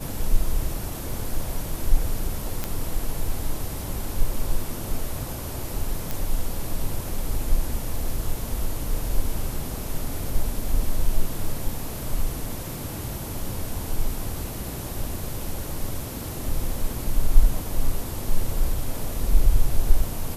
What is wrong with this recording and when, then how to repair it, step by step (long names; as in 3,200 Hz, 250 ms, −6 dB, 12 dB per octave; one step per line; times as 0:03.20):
0:02.64: click −11 dBFS
0:06.11: click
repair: click removal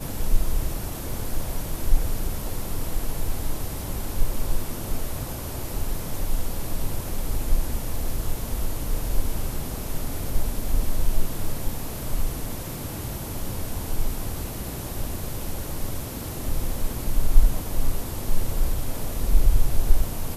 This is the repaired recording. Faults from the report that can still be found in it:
none of them is left